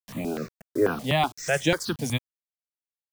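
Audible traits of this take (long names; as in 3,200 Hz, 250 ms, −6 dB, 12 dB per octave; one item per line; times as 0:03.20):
a quantiser's noise floor 8 bits, dither none
notches that jump at a steady rate 8.1 Hz 350–4,500 Hz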